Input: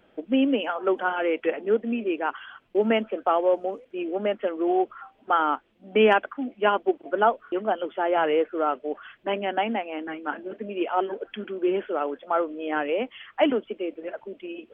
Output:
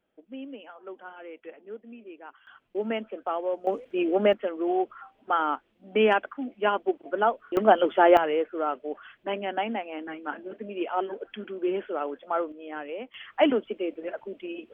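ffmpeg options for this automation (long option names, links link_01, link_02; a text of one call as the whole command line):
ffmpeg -i in.wav -af "asetnsamples=nb_out_samples=441:pad=0,asendcmd='2.47 volume volume -7.5dB;3.67 volume volume 4.5dB;4.33 volume volume -3dB;7.57 volume volume 7dB;8.17 volume volume -3.5dB;12.52 volume volume -10dB;13.14 volume volume 0dB',volume=-18dB" out.wav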